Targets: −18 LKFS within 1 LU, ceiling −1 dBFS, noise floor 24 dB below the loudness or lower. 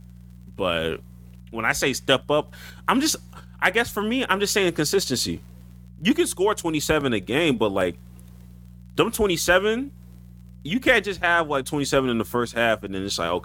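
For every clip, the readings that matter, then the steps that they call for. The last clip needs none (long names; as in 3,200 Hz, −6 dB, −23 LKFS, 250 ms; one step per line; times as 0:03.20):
crackle rate 28 per second; mains hum 60 Hz; hum harmonics up to 180 Hz; level of the hum −41 dBFS; integrated loudness −22.5 LKFS; sample peak −3.0 dBFS; target loudness −18.0 LKFS
→ click removal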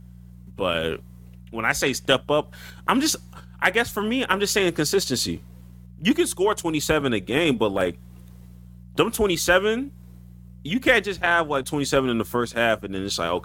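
crackle rate 0.30 per second; mains hum 60 Hz; hum harmonics up to 180 Hz; level of the hum −41 dBFS
→ hum removal 60 Hz, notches 3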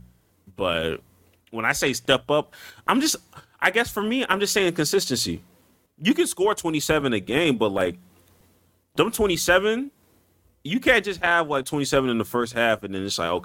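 mains hum none found; integrated loudness −22.5 LKFS; sample peak −3.0 dBFS; target loudness −18.0 LKFS
→ level +4.5 dB
brickwall limiter −1 dBFS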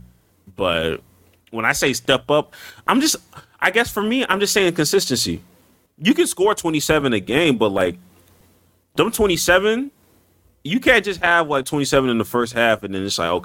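integrated loudness −18.5 LKFS; sample peak −1.0 dBFS; background noise floor −59 dBFS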